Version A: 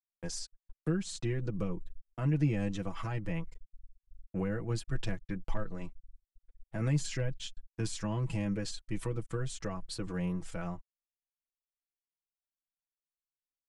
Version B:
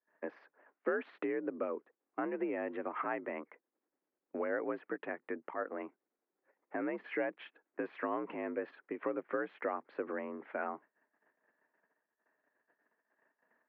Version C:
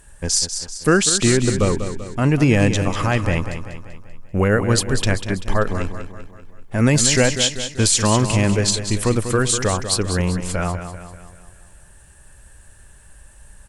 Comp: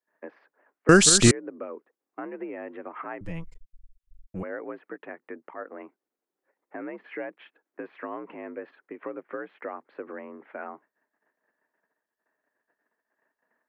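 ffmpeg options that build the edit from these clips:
ffmpeg -i take0.wav -i take1.wav -i take2.wav -filter_complex "[1:a]asplit=3[link_01][link_02][link_03];[link_01]atrim=end=0.892[link_04];[2:a]atrim=start=0.888:end=1.312[link_05];[link_02]atrim=start=1.308:end=3.212[link_06];[0:a]atrim=start=3.208:end=4.432[link_07];[link_03]atrim=start=4.428[link_08];[link_04][link_05]acrossfade=duration=0.004:curve1=hsin:curve2=hsin[link_09];[link_09][link_06]acrossfade=duration=0.004:curve1=hsin:curve2=hsin[link_10];[link_10][link_07]acrossfade=duration=0.004:curve1=hsin:curve2=hsin[link_11];[link_11][link_08]acrossfade=duration=0.004:curve1=hsin:curve2=hsin" out.wav

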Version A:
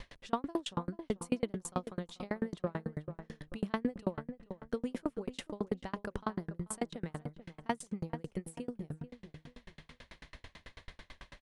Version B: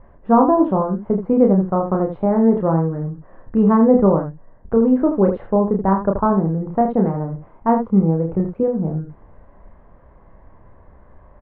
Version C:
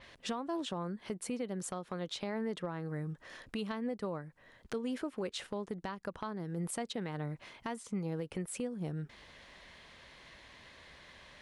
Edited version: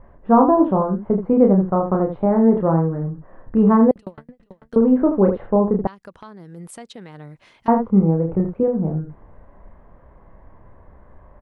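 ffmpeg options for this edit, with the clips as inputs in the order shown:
ffmpeg -i take0.wav -i take1.wav -i take2.wav -filter_complex "[1:a]asplit=3[link_01][link_02][link_03];[link_01]atrim=end=3.912[link_04];[0:a]atrim=start=3.908:end=4.762[link_05];[link_02]atrim=start=4.758:end=5.872[link_06];[2:a]atrim=start=5.868:end=7.682[link_07];[link_03]atrim=start=7.678[link_08];[link_04][link_05]acrossfade=duration=0.004:curve1=hsin:curve2=hsin[link_09];[link_09][link_06]acrossfade=duration=0.004:curve1=hsin:curve2=hsin[link_10];[link_10][link_07]acrossfade=duration=0.004:curve1=hsin:curve2=hsin[link_11];[link_11][link_08]acrossfade=duration=0.004:curve1=hsin:curve2=hsin" out.wav

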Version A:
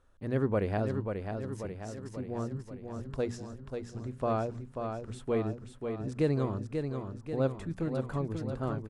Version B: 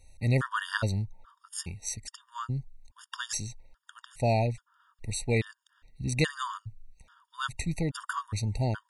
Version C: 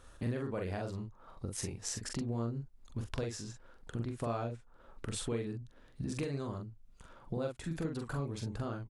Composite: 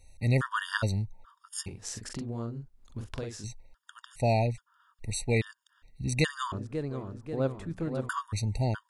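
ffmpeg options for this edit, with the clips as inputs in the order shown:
ffmpeg -i take0.wav -i take1.wav -i take2.wav -filter_complex "[1:a]asplit=3[link_01][link_02][link_03];[link_01]atrim=end=1.682[link_04];[2:a]atrim=start=1.678:end=3.442[link_05];[link_02]atrim=start=3.438:end=6.522[link_06];[0:a]atrim=start=6.518:end=8.092[link_07];[link_03]atrim=start=8.088[link_08];[link_04][link_05]acrossfade=duration=0.004:curve1=hsin:curve2=hsin[link_09];[link_09][link_06]acrossfade=duration=0.004:curve1=hsin:curve2=hsin[link_10];[link_10][link_07]acrossfade=duration=0.004:curve1=hsin:curve2=hsin[link_11];[link_11][link_08]acrossfade=duration=0.004:curve1=hsin:curve2=hsin" out.wav

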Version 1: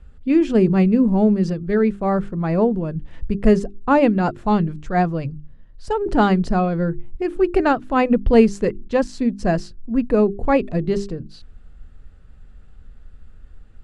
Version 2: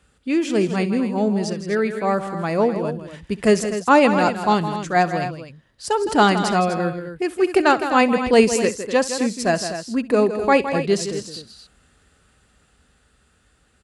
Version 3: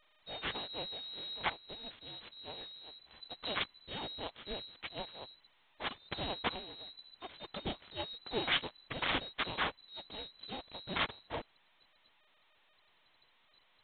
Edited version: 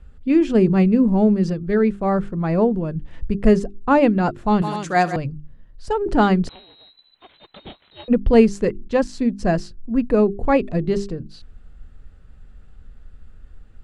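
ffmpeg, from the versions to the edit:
ffmpeg -i take0.wav -i take1.wav -i take2.wav -filter_complex "[0:a]asplit=3[link_01][link_02][link_03];[link_01]atrim=end=4.622[link_04];[1:a]atrim=start=4.618:end=5.162[link_05];[link_02]atrim=start=5.158:end=6.492[link_06];[2:a]atrim=start=6.488:end=8.082[link_07];[link_03]atrim=start=8.078[link_08];[link_04][link_05]acrossfade=duration=0.004:curve1=hsin:curve2=hsin[link_09];[link_09][link_06]acrossfade=duration=0.004:curve1=hsin:curve2=hsin[link_10];[link_10][link_07]acrossfade=duration=0.004:curve1=hsin:curve2=hsin[link_11];[link_11][link_08]acrossfade=duration=0.004:curve1=hsin:curve2=hsin" out.wav

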